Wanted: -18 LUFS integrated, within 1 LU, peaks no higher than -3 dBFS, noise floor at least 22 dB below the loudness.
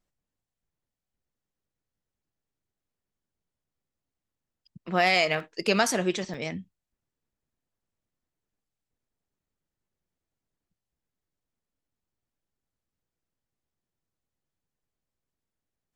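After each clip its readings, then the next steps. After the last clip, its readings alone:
dropouts 2; longest dropout 2.1 ms; loudness -25.5 LUFS; peak level -9.0 dBFS; loudness target -18.0 LUFS
-> interpolate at 5.40/6.34 s, 2.1 ms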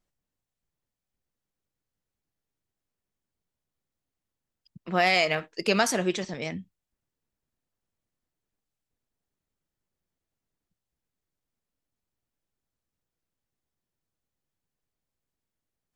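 dropouts 0; loudness -25.5 LUFS; peak level -9.0 dBFS; loudness target -18.0 LUFS
-> trim +7.5 dB; peak limiter -3 dBFS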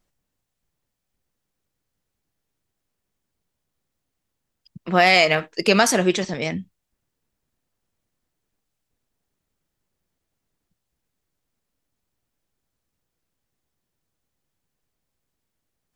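loudness -18.5 LUFS; peak level -3.0 dBFS; noise floor -80 dBFS

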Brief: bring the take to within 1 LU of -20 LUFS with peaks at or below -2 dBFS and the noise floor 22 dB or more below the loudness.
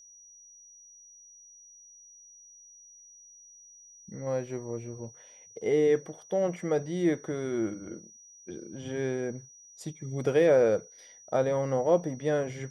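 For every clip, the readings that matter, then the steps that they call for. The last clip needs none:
steady tone 5.8 kHz; tone level -51 dBFS; loudness -29.0 LUFS; peak level -12.0 dBFS; loudness target -20.0 LUFS
-> band-stop 5.8 kHz, Q 30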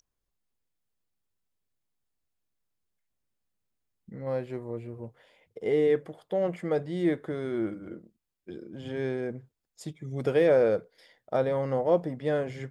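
steady tone not found; loudness -29.0 LUFS; peak level -12.5 dBFS; loudness target -20.0 LUFS
-> trim +9 dB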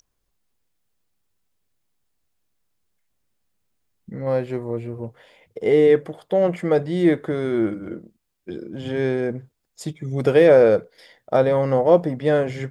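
loudness -20.0 LUFS; peak level -3.5 dBFS; noise floor -75 dBFS

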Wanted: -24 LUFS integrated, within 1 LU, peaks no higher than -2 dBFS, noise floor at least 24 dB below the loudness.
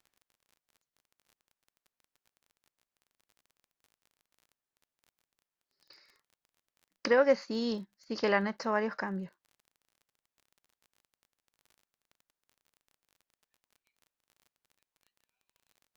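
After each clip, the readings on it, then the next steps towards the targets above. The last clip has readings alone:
tick rate 28 per s; loudness -31.0 LUFS; peak level -12.5 dBFS; loudness target -24.0 LUFS
-> de-click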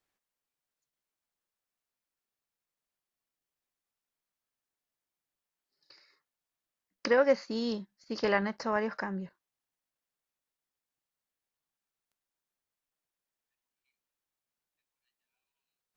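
tick rate 0.063 per s; loudness -31.0 LUFS; peak level -12.5 dBFS; loudness target -24.0 LUFS
-> trim +7 dB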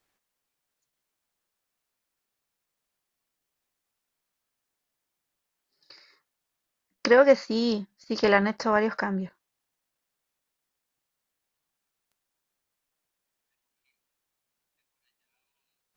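loudness -24.0 LUFS; peak level -5.5 dBFS; noise floor -84 dBFS

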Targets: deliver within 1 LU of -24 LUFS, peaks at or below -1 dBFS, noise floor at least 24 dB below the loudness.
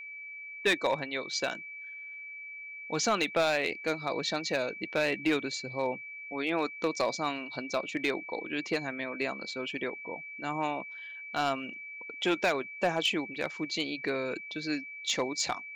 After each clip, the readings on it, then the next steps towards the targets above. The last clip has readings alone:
clipped samples 0.4%; clipping level -20.0 dBFS; steady tone 2.3 kHz; tone level -41 dBFS; loudness -32.0 LUFS; peak level -20.0 dBFS; loudness target -24.0 LUFS
-> clip repair -20 dBFS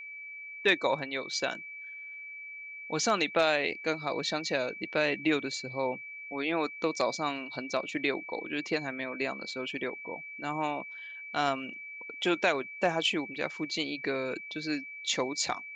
clipped samples 0.0%; steady tone 2.3 kHz; tone level -41 dBFS
-> band-stop 2.3 kHz, Q 30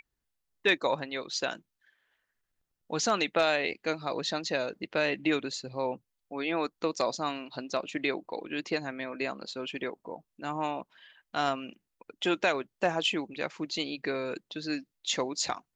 steady tone not found; loudness -31.5 LUFS; peak level -12.5 dBFS; loudness target -24.0 LUFS
-> trim +7.5 dB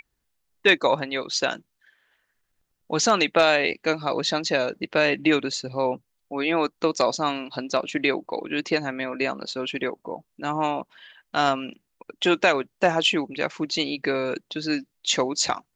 loudness -24.0 LUFS; peak level -5.0 dBFS; noise floor -76 dBFS

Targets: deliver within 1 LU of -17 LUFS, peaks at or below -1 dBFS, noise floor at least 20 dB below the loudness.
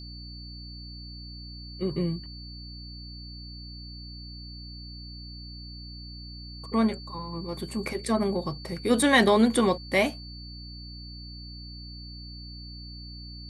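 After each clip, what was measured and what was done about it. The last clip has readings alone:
hum 60 Hz; highest harmonic 300 Hz; hum level -41 dBFS; steady tone 4.5 kHz; tone level -44 dBFS; loudness -26.0 LUFS; peak level -9.0 dBFS; loudness target -17.0 LUFS
-> hum notches 60/120/180/240/300 Hz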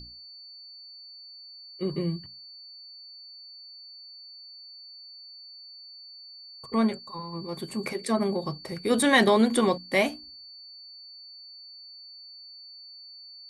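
hum not found; steady tone 4.5 kHz; tone level -44 dBFS
-> band-stop 4.5 kHz, Q 30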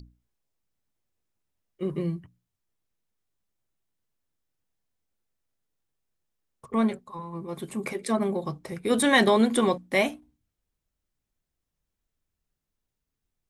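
steady tone not found; loudness -25.5 LUFS; peak level -8.5 dBFS; loudness target -17.0 LUFS
-> trim +8.5 dB; peak limiter -1 dBFS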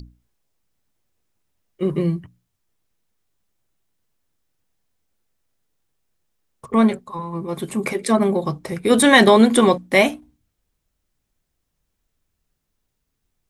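loudness -17.5 LUFS; peak level -1.0 dBFS; noise floor -76 dBFS

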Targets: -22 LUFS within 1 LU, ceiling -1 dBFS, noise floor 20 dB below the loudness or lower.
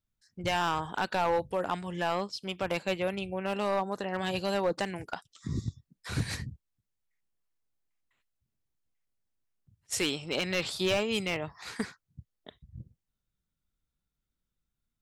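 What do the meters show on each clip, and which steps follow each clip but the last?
clipped samples 0.7%; clipping level -21.5 dBFS; loudness -32.0 LUFS; peak level -21.5 dBFS; loudness target -22.0 LUFS
-> clip repair -21.5 dBFS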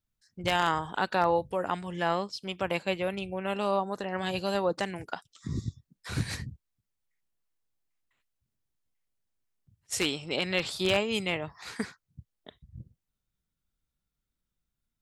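clipped samples 0.0%; loudness -31.0 LUFS; peak level -12.5 dBFS; loudness target -22.0 LUFS
-> trim +9 dB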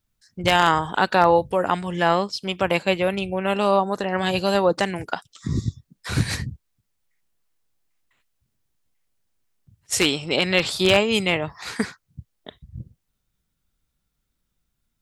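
loudness -22.0 LUFS; peak level -3.5 dBFS; noise floor -76 dBFS

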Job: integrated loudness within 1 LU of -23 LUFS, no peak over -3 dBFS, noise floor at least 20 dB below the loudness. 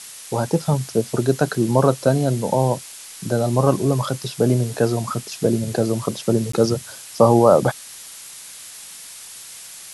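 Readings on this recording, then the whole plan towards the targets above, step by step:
dropouts 1; longest dropout 14 ms; noise floor -39 dBFS; noise floor target -40 dBFS; loudness -20.0 LUFS; peak level -1.0 dBFS; loudness target -23.0 LUFS
-> interpolate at 6.52 s, 14 ms; noise reduction 6 dB, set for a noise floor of -39 dBFS; trim -3 dB

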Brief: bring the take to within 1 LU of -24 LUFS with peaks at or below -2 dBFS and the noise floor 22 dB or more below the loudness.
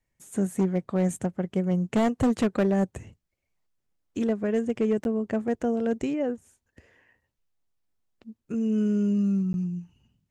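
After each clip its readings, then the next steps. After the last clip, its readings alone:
clipped samples 0.9%; clipping level -17.5 dBFS; dropouts 2; longest dropout 11 ms; loudness -26.5 LUFS; peak level -17.5 dBFS; loudness target -24.0 LUFS
-> clip repair -17.5 dBFS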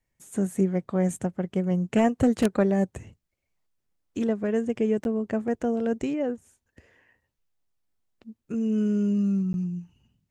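clipped samples 0.0%; dropouts 2; longest dropout 11 ms
-> interpolate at 5.04/9.53 s, 11 ms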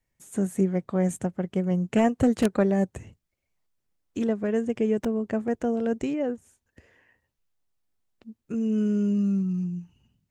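dropouts 0; loudness -26.0 LUFS; peak level -8.5 dBFS; loudness target -24.0 LUFS
-> trim +2 dB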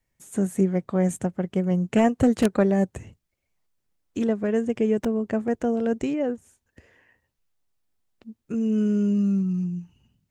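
loudness -24.0 LUFS; peak level -6.5 dBFS; noise floor -78 dBFS

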